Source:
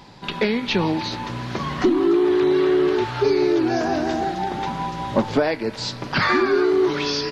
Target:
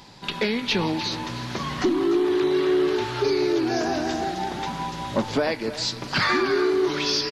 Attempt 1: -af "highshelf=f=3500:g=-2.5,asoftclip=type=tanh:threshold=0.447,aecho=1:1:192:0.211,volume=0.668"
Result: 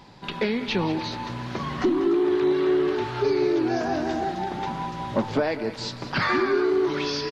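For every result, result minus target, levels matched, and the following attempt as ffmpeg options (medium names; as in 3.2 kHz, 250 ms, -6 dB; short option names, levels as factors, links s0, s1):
8 kHz band -8.0 dB; echo 112 ms early
-af "highshelf=f=3500:g=9,asoftclip=type=tanh:threshold=0.447,aecho=1:1:192:0.211,volume=0.668"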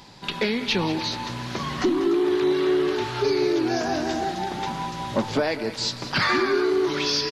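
echo 112 ms early
-af "highshelf=f=3500:g=9,asoftclip=type=tanh:threshold=0.447,aecho=1:1:304:0.211,volume=0.668"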